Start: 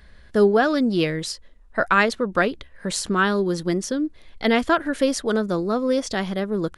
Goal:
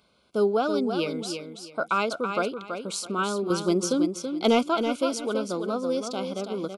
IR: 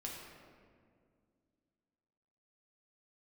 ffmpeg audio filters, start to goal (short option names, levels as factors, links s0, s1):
-filter_complex "[0:a]highpass=220,asettb=1/sr,asplit=3[s0][s1][s2];[s0]atrim=end=3.504[s3];[s1]atrim=start=3.5:end=4.63,asetpts=PTS-STARTPTS,afade=t=in:d=0.004:c=qsin,afade=t=out:st=1.126:d=0.004:c=qsin,acontrast=71[s4];[s2]atrim=start=4.626[s5];[s3][s4]acrossfade=d=0.004:c1=hsin:c2=qsin[s6];[s6][s5]acrossfade=d=0.004:c1=qsin:c2=hsin,asuperstop=centerf=1800:order=8:qfactor=2.7,aecho=1:1:329|658|987:0.447|0.112|0.0279,volume=0.531"